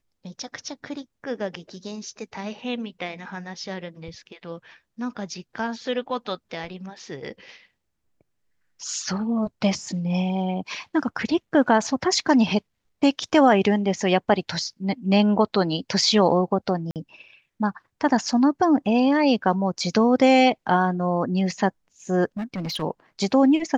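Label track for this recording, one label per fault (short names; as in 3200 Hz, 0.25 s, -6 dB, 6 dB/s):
16.910000	16.960000	gap 48 ms
22.370000	22.830000	clipped -25.5 dBFS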